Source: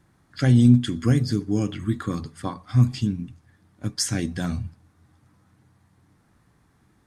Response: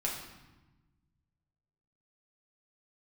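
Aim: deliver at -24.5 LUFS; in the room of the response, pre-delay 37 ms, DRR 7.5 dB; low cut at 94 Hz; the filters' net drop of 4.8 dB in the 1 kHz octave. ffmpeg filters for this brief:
-filter_complex "[0:a]highpass=94,equalizer=f=1000:t=o:g=-6.5,asplit=2[s0][s1];[1:a]atrim=start_sample=2205,adelay=37[s2];[s1][s2]afir=irnorm=-1:irlink=0,volume=0.251[s3];[s0][s3]amix=inputs=2:normalize=0,volume=0.841"

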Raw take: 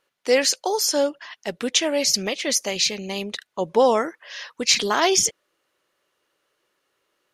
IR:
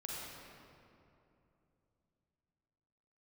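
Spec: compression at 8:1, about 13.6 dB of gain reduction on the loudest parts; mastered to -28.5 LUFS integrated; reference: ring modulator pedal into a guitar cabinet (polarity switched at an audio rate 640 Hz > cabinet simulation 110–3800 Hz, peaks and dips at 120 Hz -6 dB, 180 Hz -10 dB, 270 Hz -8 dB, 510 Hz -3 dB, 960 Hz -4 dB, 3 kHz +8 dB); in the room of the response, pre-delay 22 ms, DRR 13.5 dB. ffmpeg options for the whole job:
-filter_complex "[0:a]acompressor=threshold=0.0447:ratio=8,asplit=2[s0][s1];[1:a]atrim=start_sample=2205,adelay=22[s2];[s1][s2]afir=irnorm=-1:irlink=0,volume=0.211[s3];[s0][s3]amix=inputs=2:normalize=0,aeval=exprs='val(0)*sgn(sin(2*PI*640*n/s))':c=same,highpass=110,equalizer=f=120:t=q:w=4:g=-6,equalizer=f=180:t=q:w=4:g=-10,equalizer=f=270:t=q:w=4:g=-8,equalizer=f=510:t=q:w=4:g=-3,equalizer=f=960:t=q:w=4:g=-4,equalizer=f=3000:t=q:w=4:g=8,lowpass=f=3800:w=0.5412,lowpass=f=3800:w=1.3066,volume=1.58"

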